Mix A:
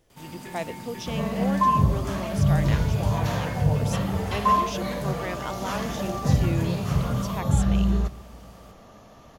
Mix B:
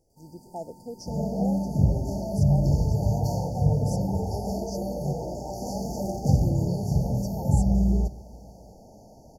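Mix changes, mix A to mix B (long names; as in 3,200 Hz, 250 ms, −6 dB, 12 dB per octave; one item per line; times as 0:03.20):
speech −4.0 dB
first sound −11.5 dB
master: add linear-phase brick-wall band-stop 930–4,400 Hz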